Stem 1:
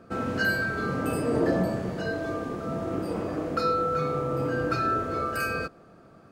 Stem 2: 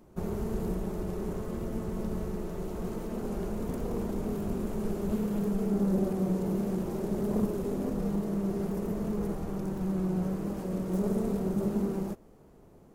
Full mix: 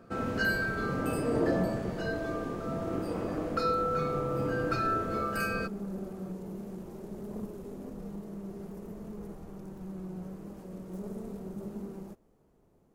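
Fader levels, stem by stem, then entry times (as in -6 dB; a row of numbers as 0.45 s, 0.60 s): -3.5 dB, -10.5 dB; 0.00 s, 0.00 s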